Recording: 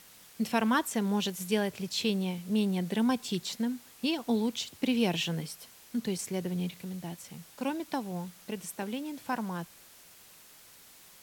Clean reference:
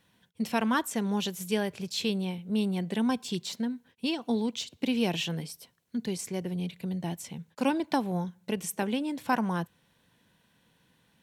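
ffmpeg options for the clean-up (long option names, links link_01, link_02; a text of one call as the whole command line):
ffmpeg -i in.wav -af "afwtdn=0.002,asetnsamples=nb_out_samples=441:pad=0,asendcmd='6.82 volume volume 6dB',volume=0dB" out.wav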